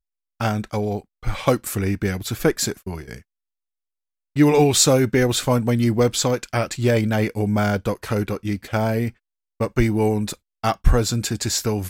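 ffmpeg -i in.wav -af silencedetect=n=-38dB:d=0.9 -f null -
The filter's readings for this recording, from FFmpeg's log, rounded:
silence_start: 3.19
silence_end: 4.36 | silence_duration: 1.17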